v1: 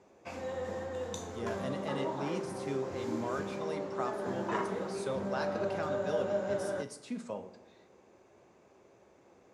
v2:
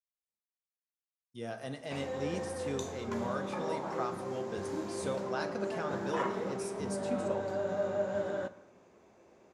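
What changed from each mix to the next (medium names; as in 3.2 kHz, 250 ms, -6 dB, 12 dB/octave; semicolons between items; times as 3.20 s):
speech: add peaking EQ 8.3 kHz +5 dB 0.8 oct; background: entry +1.65 s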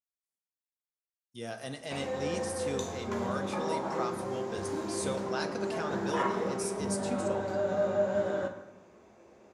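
speech: add treble shelf 2.9 kHz +9 dB; background: send +11.0 dB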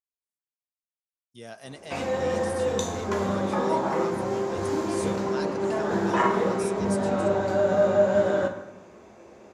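speech: send off; background +8.0 dB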